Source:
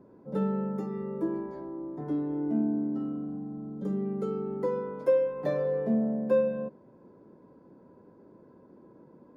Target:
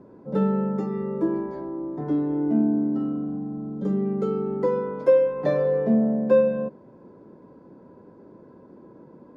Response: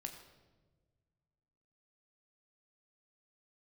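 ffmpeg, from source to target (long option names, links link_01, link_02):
-af "lowpass=6500,volume=6.5dB"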